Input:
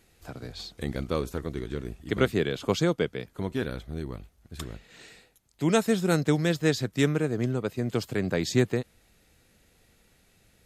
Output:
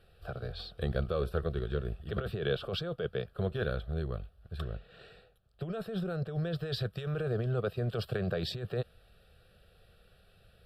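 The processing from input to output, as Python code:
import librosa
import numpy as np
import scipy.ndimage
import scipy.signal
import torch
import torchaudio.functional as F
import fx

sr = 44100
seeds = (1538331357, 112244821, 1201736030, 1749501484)

y = fx.lowpass(x, sr, hz=fx.steps((0.0, 2200.0), (4.59, 1200.0), (6.59, 3100.0)), slope=6)
y = fx.over_compress(y, sr, threshold_db=-29.0, ratio=-1.0)
y = fx.fixed_phaser(y, sr, hz=1400.0, stages=8)
y = y * 10.0 ** (1.0 / 20.0)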